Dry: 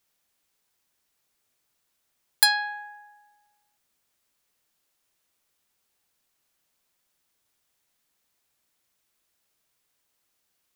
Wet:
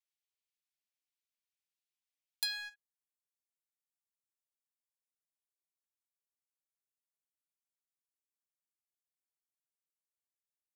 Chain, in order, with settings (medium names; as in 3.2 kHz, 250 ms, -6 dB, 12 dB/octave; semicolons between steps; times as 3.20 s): inverse Chebyshev high-pass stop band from 670 Hz, stop band 60 dB, from 2.74 s stop band from 2.2 kHz; gate -41 dBFS, range -7 dB; tilt EQ -3.5 dB/octave; compression, threshold -37 dBFS, peak gain reduction 13 dB; waveshaping leveller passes 2; saturation -24 dBFS, distortion -16 dB